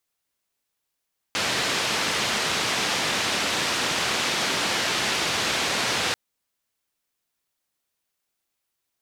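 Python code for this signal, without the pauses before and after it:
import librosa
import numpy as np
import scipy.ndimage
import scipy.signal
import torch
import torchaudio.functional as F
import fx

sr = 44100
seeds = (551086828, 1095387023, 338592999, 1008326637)

y = fx.band_noise(sr, seeds[0], length_s=4.79, low_hz=110.0, high_hz=4400.0, level_db=-25.0)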